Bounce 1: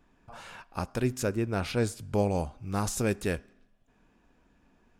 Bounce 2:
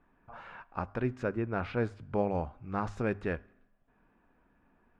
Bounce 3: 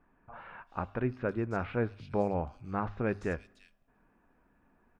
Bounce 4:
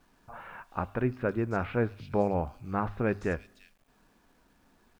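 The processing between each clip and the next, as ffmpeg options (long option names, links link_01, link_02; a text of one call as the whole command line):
ffmpeg -i in.wav -af "lowpass=2000,equalizer=frequency=1400:width_type=o:width=1.9:gain=5,bandreject=frequency=50:width_type=h:width=6,bandreject=frequency=100:width_type=h:width=6,volume=-4dB" out.wav
ffmpeg -i in.wav -filter_complex "[0:a]acrossover=split=3600[link_01][link_02];[link_02]adelay=340[link_03];[link_01][link_03]amix=inputs=2:normalize=0" out.wav
ffmpeg -i in.wav -af "acrusher=bits=11:mix=0:aa=0.000001,volume=3dB" out.wav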